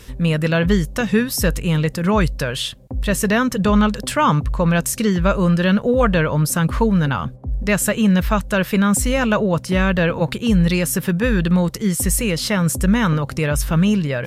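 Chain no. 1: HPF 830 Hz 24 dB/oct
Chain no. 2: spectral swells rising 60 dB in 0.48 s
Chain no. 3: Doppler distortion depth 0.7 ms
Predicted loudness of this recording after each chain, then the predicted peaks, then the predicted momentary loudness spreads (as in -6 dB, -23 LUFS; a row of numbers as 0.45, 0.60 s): -24.5, -17.0, -18.5 LUFS; -7.0, -1.5, -3.5 dBFS; 8, 4, 4 LU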